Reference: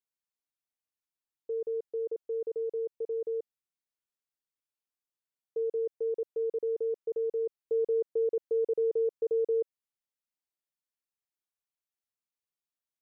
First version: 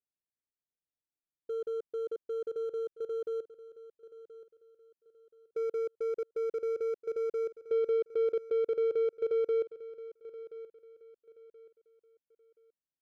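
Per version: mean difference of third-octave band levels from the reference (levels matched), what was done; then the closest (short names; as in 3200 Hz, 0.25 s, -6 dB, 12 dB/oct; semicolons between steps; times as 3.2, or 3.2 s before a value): 3.5 dB: Wiener smoothing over 41 samples; on a send: feedback echo 1.027 s, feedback 30%, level -16 dB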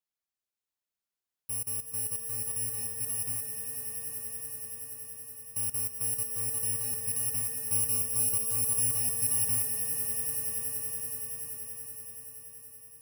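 22.0 dB: FFT order left unsorted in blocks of 128 samples; on a send: swelling echo 95 ms, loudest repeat 8, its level -10.5 dB; on the sum: gain -1 dB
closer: first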